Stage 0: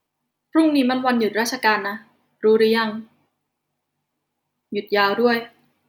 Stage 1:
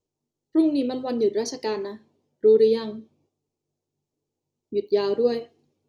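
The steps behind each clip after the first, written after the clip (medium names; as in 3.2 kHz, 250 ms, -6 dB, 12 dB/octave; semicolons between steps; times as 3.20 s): FFT filter 100 Hz 0 dB, 250 Hz -8 dB, 400 Hz +2 dB, 720 Hz -12 dB, 1.7 kHz -23 dB, 6.8 kHz -2 dB, 14 kHz -28 dB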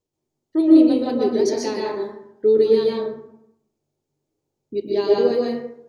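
plate-style reverb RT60 0.75 s, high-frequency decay 0.45×, pre-delay 110 ms, DRR -3 dB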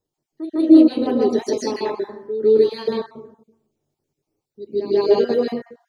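random holes in the spectrogram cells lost 27%; reverse echo 155 ms -12 dB; trim +2 dB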